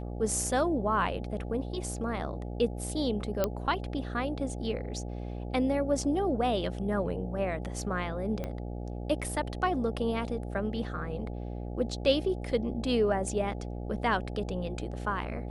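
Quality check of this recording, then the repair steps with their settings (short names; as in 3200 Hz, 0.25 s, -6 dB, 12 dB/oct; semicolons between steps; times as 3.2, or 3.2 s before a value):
buzz 60 Hz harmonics 14 -37 dBFS
3.44 pop -13 dBFS
8.44 pop -22 dBFS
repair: de-click; de-hum 60 Hz, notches 14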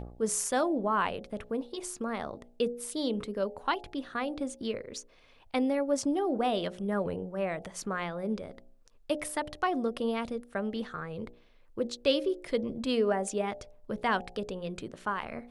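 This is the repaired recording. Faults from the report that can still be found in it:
8.44 pop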